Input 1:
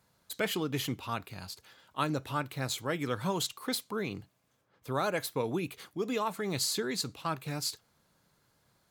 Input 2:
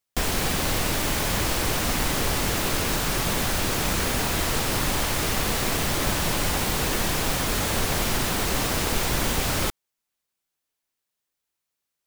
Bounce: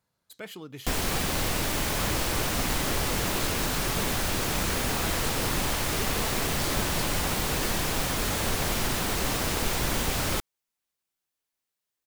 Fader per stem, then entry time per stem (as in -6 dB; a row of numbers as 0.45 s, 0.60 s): -9.0 dB, -3.0 dB; 0.00 s, 0.70 s